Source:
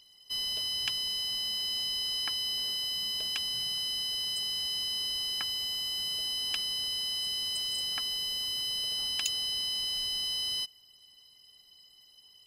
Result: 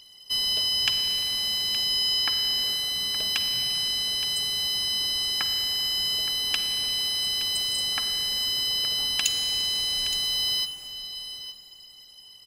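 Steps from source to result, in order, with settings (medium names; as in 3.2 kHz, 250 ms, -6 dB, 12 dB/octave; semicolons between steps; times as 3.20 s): delay 869 ms -13 dB; Schroeder reverb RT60 3.4 s, DRR 9 dB; trim +8 dB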